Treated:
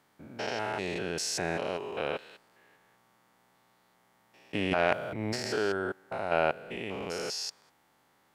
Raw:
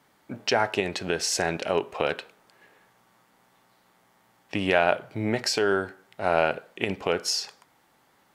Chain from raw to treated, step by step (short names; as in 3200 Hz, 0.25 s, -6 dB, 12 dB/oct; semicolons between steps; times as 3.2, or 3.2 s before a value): stepped spectrum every 0.2 s; 4.71–5.36 transient shaper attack -10 dB, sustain +8 dB; gain -3 dB